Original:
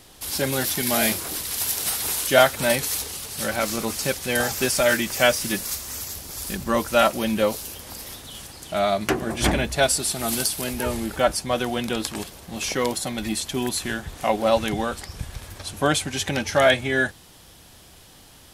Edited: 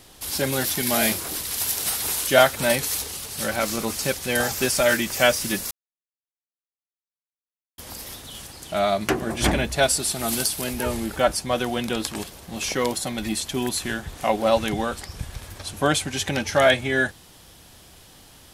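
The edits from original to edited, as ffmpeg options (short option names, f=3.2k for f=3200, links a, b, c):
-filter_complex "[0:a]asplit=3[a][b][c];[a]atrim=end=5.71,asetpts=PTS-STARTPTS,afade=t=out:st=5.706:d=0.004:c=hsin[d];[b]atrim=start=5.71:end=7.78,asetpts=PTS-STARTPTS,volume=0[e];[c]atrim=start=7.78,asetpts=PTS-STARTPTS,afade=t=in:d=0.004:c=hsin[f];[d][e][f]concat=n=3:v=0:a=1"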